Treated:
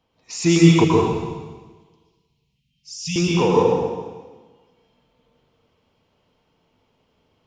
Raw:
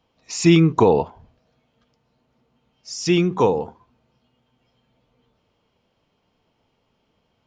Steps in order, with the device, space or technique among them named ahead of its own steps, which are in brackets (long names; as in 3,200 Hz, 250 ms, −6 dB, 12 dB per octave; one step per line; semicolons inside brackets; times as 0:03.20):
parallel distortion (in parallel at −11.5 dB: hard clipping −17 dBFS, distortion −7 dB)
0:00.84–0:03.16: on the sum: elliptic band-stop filter 170–2,600 Hz, stop band 40 dB
dense smooth reverb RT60 1.4 s, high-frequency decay 0.95×, pre-delay 105 ms, DRR −3.5 dB
level −4.5 dB